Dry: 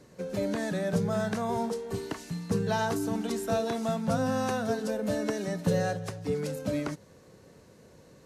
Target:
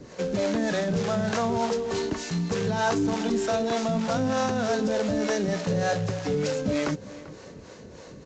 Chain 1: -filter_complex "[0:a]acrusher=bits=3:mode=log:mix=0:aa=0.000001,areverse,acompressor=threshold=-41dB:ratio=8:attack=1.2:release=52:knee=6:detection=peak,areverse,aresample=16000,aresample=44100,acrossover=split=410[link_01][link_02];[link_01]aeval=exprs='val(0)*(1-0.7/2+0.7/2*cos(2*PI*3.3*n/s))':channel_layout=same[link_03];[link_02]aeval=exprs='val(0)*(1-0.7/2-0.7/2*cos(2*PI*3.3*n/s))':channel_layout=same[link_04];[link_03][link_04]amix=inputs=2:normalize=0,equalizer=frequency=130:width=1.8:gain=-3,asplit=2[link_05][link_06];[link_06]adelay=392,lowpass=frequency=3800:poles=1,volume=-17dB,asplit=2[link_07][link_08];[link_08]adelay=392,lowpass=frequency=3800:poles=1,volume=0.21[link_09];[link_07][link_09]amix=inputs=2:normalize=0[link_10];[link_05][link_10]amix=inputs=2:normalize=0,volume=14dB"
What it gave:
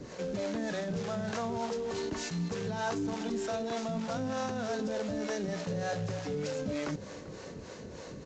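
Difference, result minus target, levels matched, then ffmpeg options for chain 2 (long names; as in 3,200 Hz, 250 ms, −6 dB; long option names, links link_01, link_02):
downward compressor: peak gain reduction +8.5 dB
-filter_complex "[0:a]acrusher=bits=3:mode=log:mix=0:aa=0.000001,areverse,acompressor=threshold=-31dB:ratio=8:attack=1.2:release=52:knee=6:detection=peak,areverse,aresample=16000,aresample=44100,acrossover=split=410[link_01][link_02];[link_01]aeval=exprs='val(0)*(1-0.7/2+0.7/2*cos(2*PI*3.3*n/s))':channel_layout=same[link_03];[link_02]aeval=exprs='val(0)*(1-0.7/2-0.7/2*cos(2*PI*3.3*n/s))':channel_layout=same[link_04];[link_03][link_04]amix=inputs=2:normalize=0,equalizer=frequency=130:width=1.8:gain=-3,asplit=2[link_05][link_06];[link_06]adelay=392,lowpass=frequency=3800:poles=1,volume=-17dB,asplit=2[link_07][link_08];[link_08]adelay=392,lowpass=frequency=3800:poles=1,volume=0.21[link_09];[link_07][link_09]amix=inputs=2:normalize=0[link_10];[link_05][link_10]amix=inputs=2:normalize=0,volume=14dB"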